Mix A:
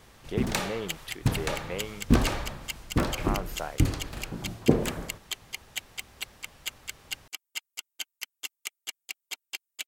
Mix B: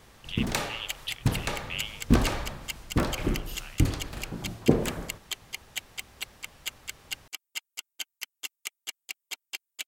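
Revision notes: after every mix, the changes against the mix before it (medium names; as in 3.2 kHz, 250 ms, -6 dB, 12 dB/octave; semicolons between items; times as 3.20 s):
speech: add resonant high-pass 2.9 kHz, resonance Q 4.9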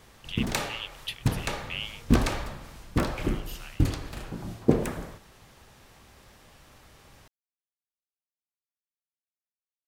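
second sound: muted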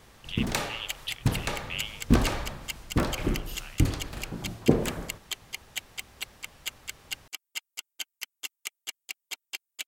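second sound: unmuted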